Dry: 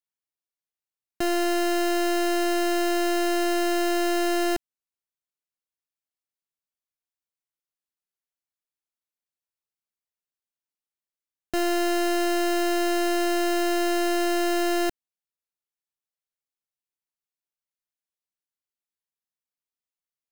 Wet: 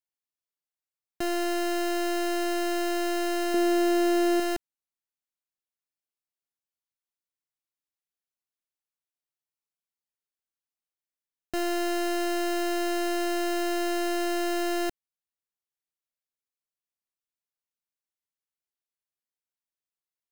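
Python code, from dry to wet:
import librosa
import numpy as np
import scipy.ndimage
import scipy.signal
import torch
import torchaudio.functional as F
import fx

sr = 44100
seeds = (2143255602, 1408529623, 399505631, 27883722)

y = fx.small_body(x, sr, hz=(260.0, 420.0), ring_ms=25, db=10, at=(3.54, 4.4))
y = y * 10.0 ** (-4.0 / 20.0)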